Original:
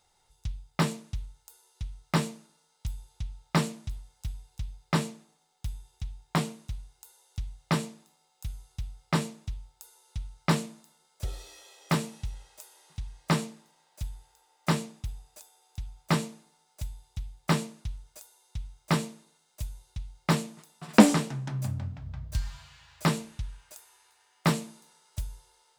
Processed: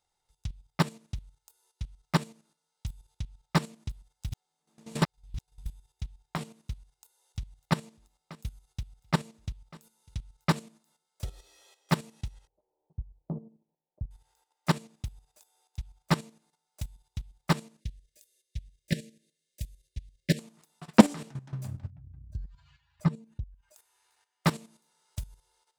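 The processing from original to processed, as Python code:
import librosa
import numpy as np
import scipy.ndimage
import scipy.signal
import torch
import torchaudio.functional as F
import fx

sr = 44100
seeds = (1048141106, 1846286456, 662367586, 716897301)

y = fx.echo_single(x, sr, ms=598, db=-19.0, at=(6.75, 10.59))
y = fx.gaussian_blur(y, sr, sigma=14.0, at=(12.47, 14.11))
y = fx.cheby1_bandstop(y, sr, low_hz=590.0, high_hz=1700.0, order=4, at=(17.8, 20.39))
y = fx.spec_expand(y, sr, power=1.7, at=(21.9, 23.75))
y = fx.edit(y, sr, fx.reverse_span(start_s=4.32, length_s=1.34), tone=tone)
y = fx.level_steps(y, sr, step_db=11)
y = fx.transient(y, sr, attack_db=8, sustain_db=-1)
y = y * 10.0 ** (-5.0 / 20.0)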